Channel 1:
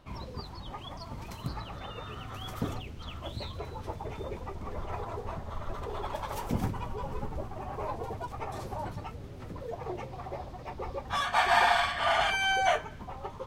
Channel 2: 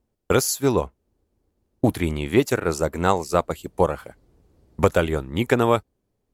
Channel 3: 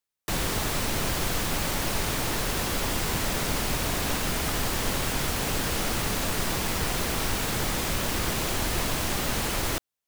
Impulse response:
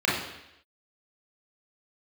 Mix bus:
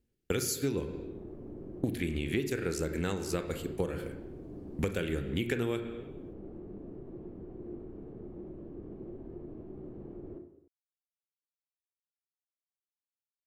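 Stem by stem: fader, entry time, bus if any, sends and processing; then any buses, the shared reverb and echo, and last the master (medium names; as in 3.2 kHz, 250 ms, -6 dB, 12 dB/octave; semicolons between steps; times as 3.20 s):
mute
-4.0 dB, 0.00 s, send -21 dB, high-order bell 860 Hz -13.5 dB 1.3 oct
-16.5 dB, 0.60 s, send -17.5 dB, peak limiter -20.5 dBFS, peak gain reduction 6.5 dB; resonant low-pass 370 Hz, resonance Q 3.6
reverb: on, RT60 0.85 s, pre-delay 28 ms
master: compression 6:1, threshold -28 dBFS, peak gain reduction 12 dB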